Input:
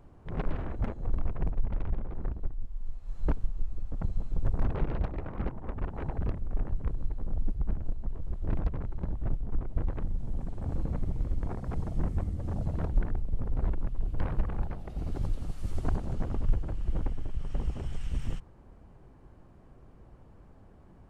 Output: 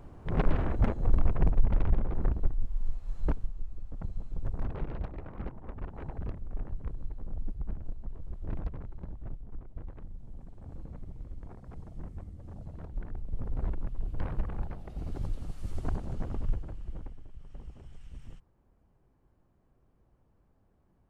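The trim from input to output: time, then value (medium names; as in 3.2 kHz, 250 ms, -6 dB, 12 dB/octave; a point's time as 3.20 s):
2.86 s +5.5 dB
3.59 s -5.5 dB
8.65 s -5.5 dB
9.65 s -12 dB
12.89 s -12 dB
13.40 s -3 dB
16.43 s -3 dB
17.25 s -14 dB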